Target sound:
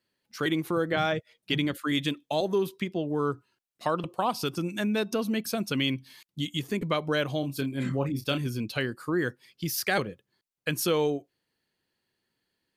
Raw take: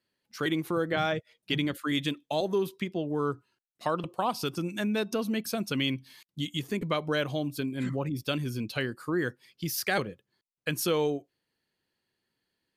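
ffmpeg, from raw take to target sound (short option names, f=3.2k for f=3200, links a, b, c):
-filter_complex "[0:a]asettb=1/sr,asplit=3[a][b][c];[a]atrim=end=7.404[d];[b]atrim=start=7.4:end=8.47,asetpts=PTS-STARTPTS,afade=t=in:d=0.004:c=qsin,afade=t=out:st=1.066:d=0.004:c=qsin,asplit=2[e][f];[f]adelay=29,volume=-8dB[g];[e][g]amix=inputs=2:normalize=0,atrim=end_sample=47187[h];[c]atrim=start=8.466[i];[d][h]acrossfade=d=0.004:c1=hsin:c2=qsin[j];[j][i]acrossfade=d=0.004:c1=qsin:c2=hsin,volume=1.5dB"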